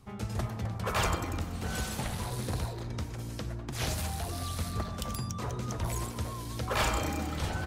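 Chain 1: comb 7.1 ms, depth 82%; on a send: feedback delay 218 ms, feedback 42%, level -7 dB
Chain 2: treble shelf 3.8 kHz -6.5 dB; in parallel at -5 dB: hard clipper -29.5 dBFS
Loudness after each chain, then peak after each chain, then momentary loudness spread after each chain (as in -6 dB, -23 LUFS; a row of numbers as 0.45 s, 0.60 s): -31.5 LUFS, -31.5 LUFS; -12.5 dBFS, -15.5 dBFS; 8 LU, 6 LU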